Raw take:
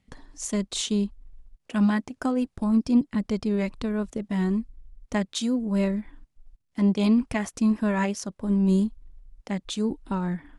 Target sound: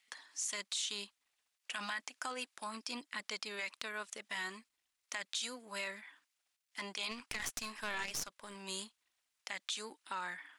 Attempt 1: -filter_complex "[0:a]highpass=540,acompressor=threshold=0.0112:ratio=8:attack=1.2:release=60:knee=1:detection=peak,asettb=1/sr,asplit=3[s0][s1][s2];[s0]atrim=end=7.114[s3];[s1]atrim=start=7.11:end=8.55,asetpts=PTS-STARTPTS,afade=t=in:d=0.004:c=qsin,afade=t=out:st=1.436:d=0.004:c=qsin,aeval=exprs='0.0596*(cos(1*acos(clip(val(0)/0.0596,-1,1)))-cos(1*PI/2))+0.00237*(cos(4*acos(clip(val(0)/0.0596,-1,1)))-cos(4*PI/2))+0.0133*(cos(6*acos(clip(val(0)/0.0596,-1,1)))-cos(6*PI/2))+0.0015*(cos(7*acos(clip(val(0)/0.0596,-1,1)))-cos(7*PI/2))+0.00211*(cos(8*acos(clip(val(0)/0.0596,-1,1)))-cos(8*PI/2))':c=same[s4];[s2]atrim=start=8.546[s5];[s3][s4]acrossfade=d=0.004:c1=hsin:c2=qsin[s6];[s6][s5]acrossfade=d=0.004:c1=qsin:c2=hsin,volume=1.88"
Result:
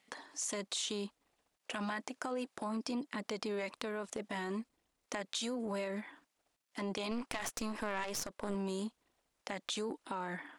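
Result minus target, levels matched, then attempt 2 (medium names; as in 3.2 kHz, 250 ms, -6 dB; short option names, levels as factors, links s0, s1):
500 Hz band +8.5 dB
-filter_complex "[0:a]highpass=1700,acompressor=threshold=0.0112:ratio=8:attack=1.2:release=60:knee=1:detection=peak,asettb=1/sr,asplit=3[s0][s1][s2];[s0]atrim=end=7.114[s3];[s1]atrim=start=7.11:end=8.55,asetpts=PTS-STARTPTS,afade=t=in:d=0.004:c=qsin,afade=t=out:st=1.436:d=0.004:c=qsin,aeval=exprs='0.0596*(cos(1*acos(clip(val(0)/0.0596,-1,1)))-cos(1*PI/2))+0.00237*(cos(4*acos(clip(val(0)/0.0596,-1,1)))-cos(4*PI/2))+0.0133*(cos(6*acos(clip(val(0)/0.0596,-1,1)))-cos(6*PI/2))+0.0015*(cos(7*acos(clip(val(0)/0.0596,-1,1)))-cos(7*PI/2))+0.00211*(cos(8*acos(clip(val(0)/0.0596,-1,1)))-cos(8*PI/2))':c=same[s4];[s2]atrim=start=8.546[s5];[s3][s4]acrossfade=d=0.004:c1=hsin:c2=qsin[s6];[s6][s5]acrossfade=d=0.004:c1=qsin:c2=hsin,volume=1.88"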